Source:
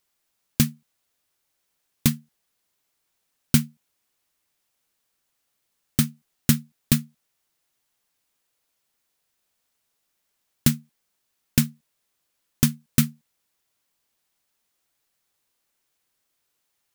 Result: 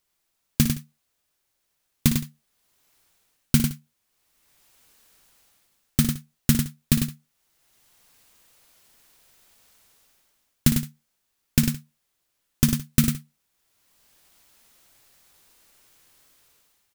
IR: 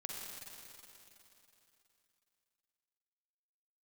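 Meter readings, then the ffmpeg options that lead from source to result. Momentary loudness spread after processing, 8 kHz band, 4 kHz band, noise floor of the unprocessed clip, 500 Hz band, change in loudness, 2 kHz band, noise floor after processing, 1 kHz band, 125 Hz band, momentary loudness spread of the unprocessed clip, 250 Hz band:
10 LU, 0.0 dB, 0.0 dB, −76 dBFS, +0.5 dB, 0.0 dB, 0.0 dB, −76 dBFS, 0.0 dB, +1.0 dB, 7 LU, +1.0 dB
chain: -filter_complex "[0:a]lowshelf=frequency=69:gain=7.5,dynaudnorm=framelen=270:gausssize=5:maxgain=16dB,asplit=2[link_01][link_02];[link_02]aecho=0:1:57|99|167:0.335|0.473|0.1[link_03];[link_01][link_03]amix=inputs=2:normalize=0,volume=-1dB"

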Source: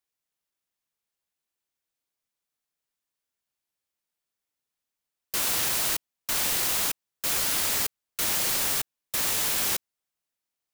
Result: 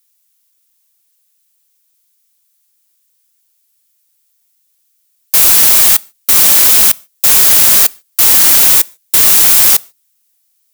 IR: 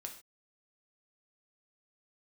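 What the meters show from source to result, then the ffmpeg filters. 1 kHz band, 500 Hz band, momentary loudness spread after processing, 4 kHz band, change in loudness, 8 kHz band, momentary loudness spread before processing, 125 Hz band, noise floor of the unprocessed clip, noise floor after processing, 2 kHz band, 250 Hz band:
+12.5 dB, +12.0 dB, 7 LU, +14.5 dB, +20.0 dB, +18.0 dB, 7 LU, can't be measured, below −85 dBFS, −60 dBFS, +13.0 dB, +12.5 dB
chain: -filter_complex "[0:a]crystalizer=i=9.5:c=0,acontrast=83,asplit=2[link_01][link_02];[1:a]atrim=start_sample=2205[link_03];[link_02][link_03]afir=irnorm=-1:irlink=0,volume=-14dB[link_04];[link_01][link_04]amix=inputs=2:normalize=0,volume=-4dB"

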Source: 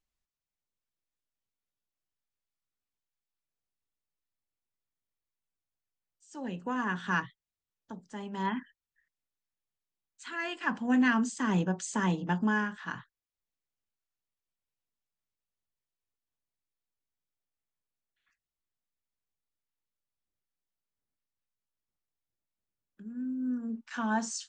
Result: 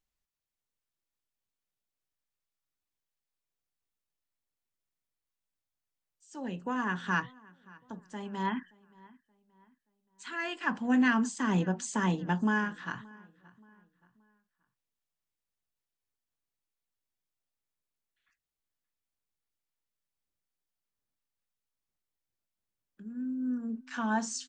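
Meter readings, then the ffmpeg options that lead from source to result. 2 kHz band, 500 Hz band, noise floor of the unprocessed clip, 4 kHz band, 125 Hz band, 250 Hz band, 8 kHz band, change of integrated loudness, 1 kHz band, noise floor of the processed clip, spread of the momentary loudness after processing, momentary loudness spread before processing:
0.0 dB, 0.0 dB, below −85 dBFS, 0.0 dB, 0.0 dB, 0.0 dB, 0.0 dB, 0.0 dB, 0.0 dB, below −85 dBFS, 17 LU, 17 LU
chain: -filter_complex "[0:a]asplit=2[link_01][link_02];[link_02]adelay=576,lowpass=frequency=3200:poles=1,volume=-23.5dB,asplit=2[link_03][link_04];[link_04]adelay=576,lowpass=frequency=3200:poles=1,volume=0.4,asplit=2[link_05][link_06];[link_06]adelay=576,lowpass=frequency=3200:poles=1,volume=0.4[link_07];[link_01][link_03][link_05][link_07]amix=inputs=4:normalize=0"

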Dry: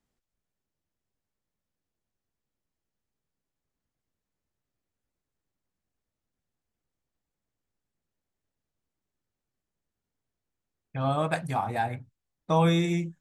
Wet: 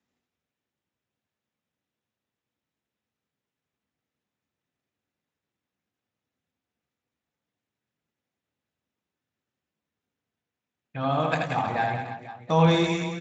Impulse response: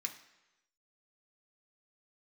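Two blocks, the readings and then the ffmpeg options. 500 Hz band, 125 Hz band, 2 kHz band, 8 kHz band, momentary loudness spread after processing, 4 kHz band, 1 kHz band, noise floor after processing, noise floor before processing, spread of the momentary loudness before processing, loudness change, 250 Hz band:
+3.5 dB, +1.5 dB, +5.0 dB, can't be measured, 16 LU, +5.0 dB, +3.0 dB, below −85 dBFS, below −85 dBFS, 10 LU, +2.5 dB, +2.0 dB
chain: -filter_complex "[0:a]aecho=1:1:80|184|319.2|495|723.4:0.631|0.398|0.251|0.158|0.1,asplit=2[link_01][link_02];[1:a]atrim=start_sample=2205,atrim=end_sample=3969,lowshelf=frequency=130:gain=-2.5[link_03];[link_02][link_03]afir=irnorm=-1:irlink=0,volume=-3.5dB[link_04];[link_01][link_04]amix=inputs=2:normalize=0" -ar 16000 -c:a libspeex -b:a 34k

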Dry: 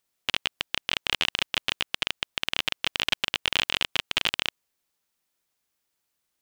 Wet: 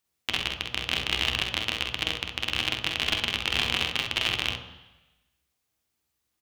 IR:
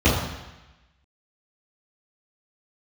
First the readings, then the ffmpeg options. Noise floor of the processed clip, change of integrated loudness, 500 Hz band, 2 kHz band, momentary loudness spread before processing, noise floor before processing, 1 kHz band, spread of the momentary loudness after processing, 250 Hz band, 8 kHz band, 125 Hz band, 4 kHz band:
−79 dBFS, 0.0 dB, +1.0 dB, 0.0 dB, 5 LU, −79 dBFS, 0.0 dB, 5 LU, +4.0 dB, −0.5 dB, +8.0 dB, 0.0 dB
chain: -filter_complex "[0:a]aecho=1:1:48|65:0.422|0.447,asplit=2[link_01][link_02];[1:a]atrim=start_sample=2205[link_03];[link_02][link_03]afir=irnorm=-1:irlink=0,volume=-25dB[link_04];[link_01][link_04]amix=inputs=2:normalize=0,volume=-2dB"

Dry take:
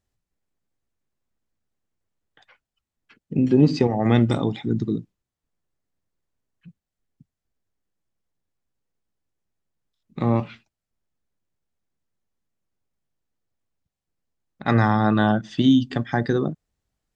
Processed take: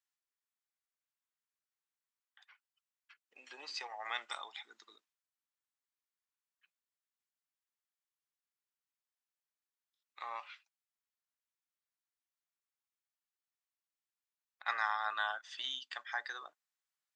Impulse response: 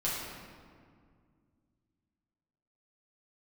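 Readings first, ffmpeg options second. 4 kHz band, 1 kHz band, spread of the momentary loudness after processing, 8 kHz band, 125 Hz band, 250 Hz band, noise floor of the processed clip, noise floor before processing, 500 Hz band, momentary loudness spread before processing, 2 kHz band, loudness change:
−7.5 dB, −12.5 dB, 20 LU, can't be measured, below −40 dB, below −40 dB, below −85 dBFS, below −85 dBFS, −29.5 dB, 11 LU, −7.5 dB, −18.5 dB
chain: -af "highpass=frequency=1000:width=0.5412,highpass=frequency=1000:width=1.3066,volume=-7.5dB"

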